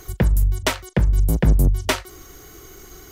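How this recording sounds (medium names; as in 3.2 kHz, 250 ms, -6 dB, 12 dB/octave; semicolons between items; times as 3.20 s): noise floor -44 dBFS; spectral tilt -5.0 dB/octave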